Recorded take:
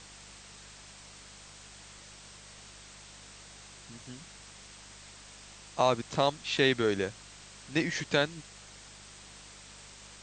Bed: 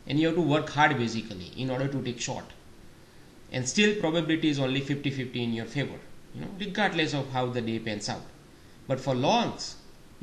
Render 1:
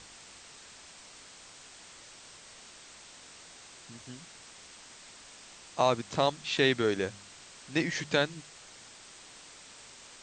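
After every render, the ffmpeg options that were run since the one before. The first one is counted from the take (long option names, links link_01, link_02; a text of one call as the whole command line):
ffmpeg -i in.wav -af "bandreject=frequency=50:width_type=h:width=4,bandreject=frequency=100:width_type=h:width=4,bandreject=frequency=150:width_type=h:width=4,bandreject=frequency=200:width_type=h:width=4" out.wav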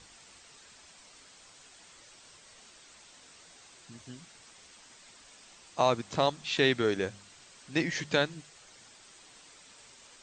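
ffmpeg -i in.wav -af "afftdn=noise_reduction=6:noise_floor=-52" out.wav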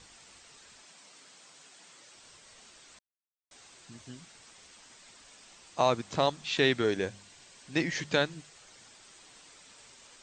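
ffmpeg -i in.wav -filter_complex "[0:a]asettb=1/sr,asplit=3[link_01][link_02][link_03];[link_01]atrim=end=0.824[link_04];[link_02]atrim=start=0.82:end=2.16,asetpts=PTS-STARTPTS,afade=type=in:duration=0.004:curve=qsin,afade=type=out:start_time=1.336:duration=0.004:curve=qsin,highpass=frequency=130:width=0.5412,highpass=frequency=130:width=1.3066[link_05];[link_03]atrim=start=2.156[link_06];[link_04][link_05]acrossfade=duration=0.004:curve1=hsin:curve2=qsin[link_07];[link_07][link_06]acrossfade=duration=0.004:curve1=qsin:curve2=hsin,asettb=1/sr,asplit=3[link_08][link_09][link_10];[link_08]atrim=end=6.844[link_11];[link_09]atrim=start=6.84:end=7.74,asetpts=PTS-STARTPTS,afade=type=in:duration=0.004:curve=qsin,afade=type=out:start_time=0.896:duration=0.004:curve=qsin,bandreject=frequency=1300:width=7.8[link_12];[link_10]atrim=start=7.736[link_13];[link_11][link_12]acrossfade=duration=0.004:curve1=hsin:curve2=qsin[link_14];[link_14][link_13]acrossfade=duration=0.004:curve1=qsin:curve2=hsin,asplit=3[link_15][link_16][link_17];[link_15]atrim=end=2.99,asetpts=PTS-STARTPTS,afade=type=out:start_time=2.986:duration=0.004:curve=hsin[link_18];[link_16]atrim=start=2.99:end=3.51,asetpts=PTS-STARTPTS,volume=0[link_19];[link_17]atrim=start=3.51,asetpts=PTS-STARTPTS,afade=type=in:duration=0.004:curve=hsin[link_20];[link_18][link_19][link_20]concat=n=3:v=0:a=1" out.wav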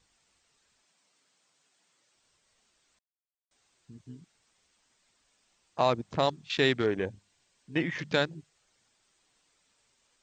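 ffmpeg -i in.wav -af "lowshelf=frequency=97:gain=5,afwtdn=0.0126" out.wav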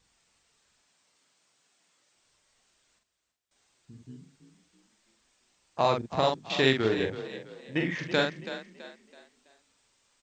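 ffmpeg -i in.wav -filter_complex "[0:a]asplit=2[link_01][link_02];[link_02]adelay=45,volume=-4.5dB[link_03];[link_01][link_03]amix=inputs=2:normalize=0,asplit=5[link_04][link_05][link_06][link_07][link_08];[link_05]adelay=329,afreqshift=30,volume=-12dB[link_09];[link_06]adelay=658,afreqshift=60,volume=-20.6dB[link_10];[link_07]adelay=987,afreqshift=90,volume=-29.3dB[link_11];[link_08]adelay=1316,afreqshift=120,volume=-37.9dB[link_12];[link_04][link_09][link_10][link_11][link_12]amix=inputs=5:normalize=0" out.wav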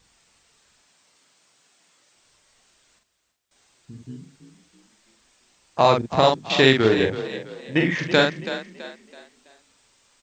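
ffmpeg -i in.wav -af "volume=8.5dB,alimiter=limit=-3dB:level=0:latency=1" out.wav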